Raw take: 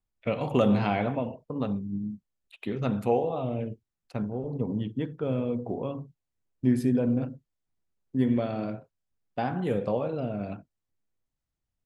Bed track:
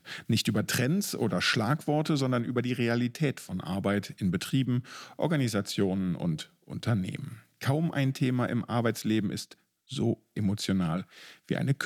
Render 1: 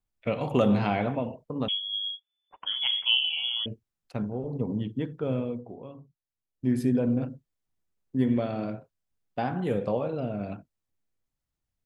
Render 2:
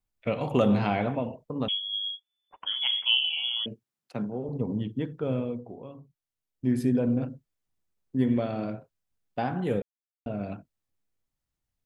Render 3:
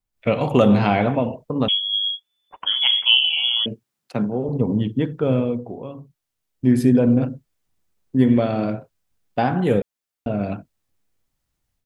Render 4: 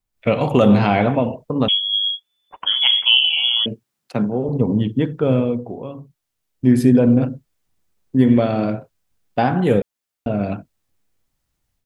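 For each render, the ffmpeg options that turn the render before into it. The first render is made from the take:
-filter_complex "[0:a]asettb=1/sr,asplit=3[a][b][c];[a]atrim=end=1.684[d];[b]atrim=start=1.68:end=3.66,asetpts=PTS-STARTPTS,afade=t=in:d=0.004:c=qsin,afade=t=out:st=1.976:d=0.004:c=qsin,lowpass=f=3k:t=q:w=0.5098,lowpass=f=3k:t=q:w=0.6013,lowpass=f=3k:t=q:w=0.9,lowpass=f=3k:t=q:w=2.563,afreqshift=-3500[e];[c]atrim=start=3.656[f];[d][e]acrossfade=d=0.004:c1=hsin:c2=qsin[g];[g][f]acrossfade=d=0.004:c1=qsin:c2=hsin,asplit=3[h][i][j];[h]atrim=end=5.69,asetpts=PTS-STARTPTS,afade=t=out:st=5.36:d=0.33:silence=0.298538[k];[i]atrim=start=5.69:end=6.48,asetpts=PTS-STARTPTS,volume=-10.5dB[l];[j]atrim=start=6.48,asetpts=PTS-STARTPTS,afade=t=in:d=0.33:silence=0.298538[m];[k][l][m]concat=n=3:v=0:a=1"
-filter_complex "[0:a]asettb=1/sr,asplit=3[a][b][c];[a]atrim=end=2.654[d];[b]atrim=start=2.65:end=4.49,asetpts=PTS-STARTPTS,afade=t=in:d=0.004:c=qsin,afade=t=out:st=1.836:d=0.004:c=qsin,highpass=f=130:w=0.5412,highpass=f=130:w=1.3066[e];[c]atrim=start=4.486[f];[d][e]acrossfade=d=0.004:c1=hsin:c2=qsin[g];[g][f]acrossfade=d=0.004:c1=qsin:c2=hsin,asplit=3[h][i][j];[h]atrim=end=9.82,asetpts=PTS-STARTPTS,afade=t=out:st=9.816:d=0.004:c=hsin[k];[i]atrim=start=9.82:end=10.26,asetpts=PTS-STARTPTS,volume=0[l];[j]atrim=start=10.26,asetpts=PTS-STARTPTS,afade=t=in:d=0.004:c=hsin[m];[k][l][m]concat=n=3:v=0:a=1"
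-af "dynaudnorm=f=110:g=3:m=9.5dB"
-af "volume=2.5dB,alimiter=limit=-3dB:level=0:latency=1"

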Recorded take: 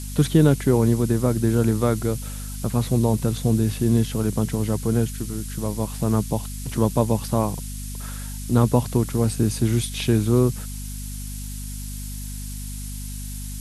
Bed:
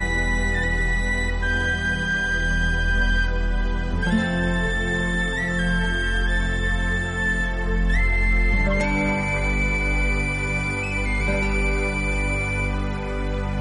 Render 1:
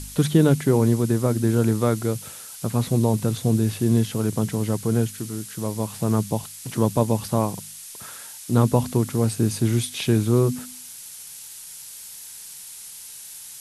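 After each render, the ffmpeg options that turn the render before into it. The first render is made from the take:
-af "bandreject=f=50:t=h:w=4,bandreject=f=100:t=h:w=4,bandreject=f=150:t=h:w=4,bandreject=f=200:t=h:w=4,bandreject=f=250:t=h:w=4"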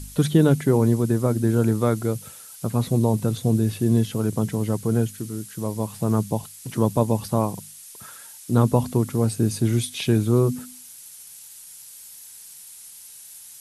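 -af "afftdn=nr=6:nf=-40"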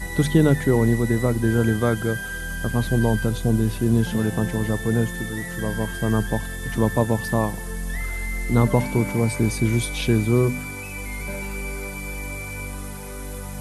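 -filter_complex "[1:a]volume=-8.5dB[a];[0:a][a]amix=inputs=2:normalize=0"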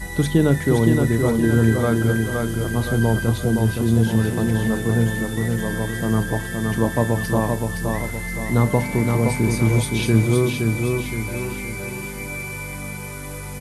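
-filter_complex "[0:a]asplit=2[a][b];[b]adelay=35,volume=-14dB[c];[a][c]amix=inputs=2:normalize=0,aecho=1:1:518|1036|1554|2072|2590|3108:0.631|0.29|0.134|0.0614|0.0283|0.013"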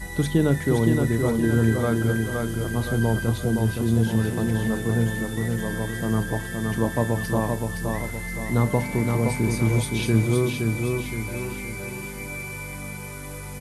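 -af "volume=-3.5dB"

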